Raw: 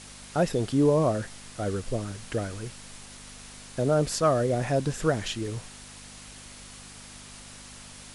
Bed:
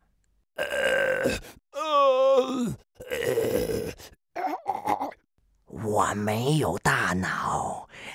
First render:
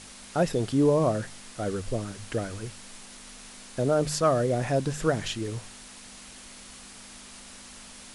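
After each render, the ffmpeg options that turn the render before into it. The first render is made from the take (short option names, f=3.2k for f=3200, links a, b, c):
-af "bandreject=f=50:t=h:w=4,bandreject=f=100:t=h:w=4,bandreject=f=150:t=h:w=4"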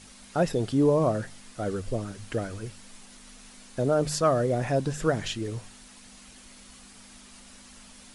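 -af "afftdn=nr=6:nf=-47"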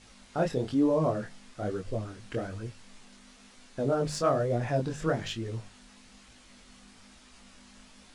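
-af "flanger=delay=17:depth=8:speed=1.1,adynamicsmooth=sensitivity=4:basefreq=7.5k"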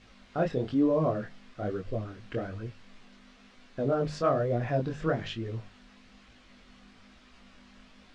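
-af "lowpass=3.7k,bandreject=f=880:w=12"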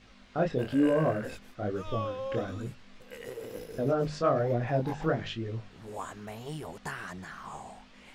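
-filter_complex "[1:a]volume=-15.5dB[a];[0:a][a]amix=inputs=2:normalize=0"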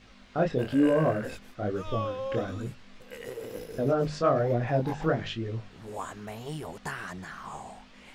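-af "volume=2dB"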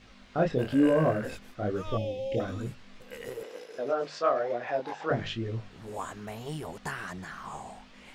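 -filter_complex "[0:a]asettb=1/sr,asplit=3[a][b][c];[a]atrim=end=1.974[d];[b]atrim=start=1.97:end=2.4,asetpts=PTS-STARTPTS,afade=t=in:d=0.004:c=qsin,afade=t=out:st=0.426:d=0.004:c=qsin,asuperstop=centerf=1300:order=8:qfactor=0.98[e];[c]atrim=start=2.396[f];[d][e]acrossfade=d=0.004:c1=hsin:c2=qsin[g];[g][f]acrossfade=d=0.004:c1=qsin:c2=hsin,asettb=1/sr,asplit=3[h][i][j];[h]atrim=end=3.434[k];[i]atrim=start=3.43:end=5.11,asetpts=PTS-STARTPTS,afade=t=in:d=0.004:c=qsin,afade=t=out:st=1.676:d=0.004:c=qsin,highpass=520,lowpass=6.5k[l];[j]atrim=start=5.106[m];[k][l]acrossfade=d=0.004:c1=hsin:c2=qsin[n];[n][m]acrossfade=d=0.004:c1=qsin:c2=hsin"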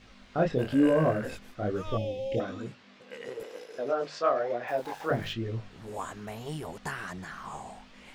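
-filter_complex "[0:a]asettb=1/sr,asplit=3[a][b][c];[a]atrim=end=2.404[d];[b]atrim=start=2.4:end=3.4,asetpts=PTS-STARTPTS,afade=t=in:d=0.004:c=qsin,afade=t=out:st=0.996:d=0.004:c=qsin,highpass=170,lowpass=5.9k[e];[c]atrim=start=3.396[f];[d][e]acrossfade=d=0.004:c1=hsin:c2=qsin[g];[g][f]acrossfade=d=0.004:c1=qsin:c2=hsin,asplit=3[h][i][j];[h]afade=t=out:st=4.67:d=0.02[k];[i]aeval=exprs='val(0)*gte(abs(val(0)),0.00473)':c=same,afade=t=in:st=4.67:d=0.02,afade=t=out:st=5.32:d=0.02[l];[j]afade=t=in:st=5.32:d=0.02[m];[k][l][m]amix=inputs=3:normalize=0"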